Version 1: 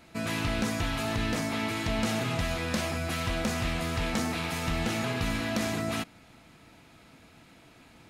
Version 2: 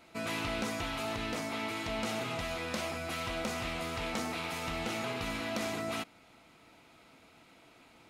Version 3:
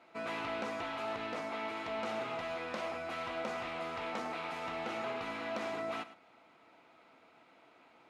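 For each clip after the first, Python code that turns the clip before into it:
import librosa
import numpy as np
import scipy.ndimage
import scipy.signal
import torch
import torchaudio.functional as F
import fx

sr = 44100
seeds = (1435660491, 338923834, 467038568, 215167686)

y1 = fx.bass_treble(x, sr, bass_db=-9, treble_db=-3)
y1 = fx.notch(y1, sr, hz=1700.0, q=10.0)
y1 = fx.rider(y1, sr, range_db=10, speed_s=2.0)
y1 = F.gain(torch.from_numpy(y1), -3.0).numpy()
y2 = fx.bandpass_q(y1, sr, hz=880.0, q=0.58)
y2 = y2 + 10.0 ** (-15.0 / 20.0) * np.pad(y2, (int(108 * sr / 1000.0), 0))[:len(y2)]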